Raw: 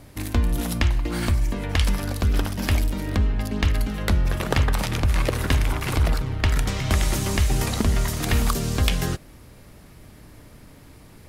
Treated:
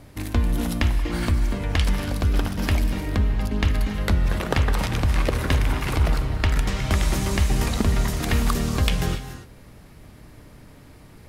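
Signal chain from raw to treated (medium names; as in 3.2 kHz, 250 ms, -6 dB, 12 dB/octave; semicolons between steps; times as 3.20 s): treble shelf 5.1 kHz -4.5 dB; gated-style reverb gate 310 ms rising, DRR 9 dB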